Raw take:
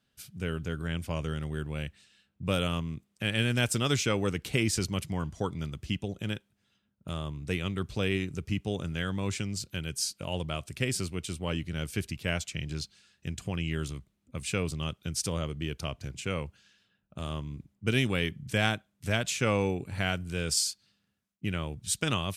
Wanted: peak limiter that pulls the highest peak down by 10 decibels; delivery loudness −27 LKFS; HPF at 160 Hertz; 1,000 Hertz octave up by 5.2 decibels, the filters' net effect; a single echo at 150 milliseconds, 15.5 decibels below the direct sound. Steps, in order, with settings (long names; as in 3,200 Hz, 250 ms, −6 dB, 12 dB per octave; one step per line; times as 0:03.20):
high-pass filter 160 Hz
parametric band 1,000 Hz +7 dB
brickwall limiter −17.5 dBFS
single-tap delay 150 ms −15.5 dB
level +6.5 dB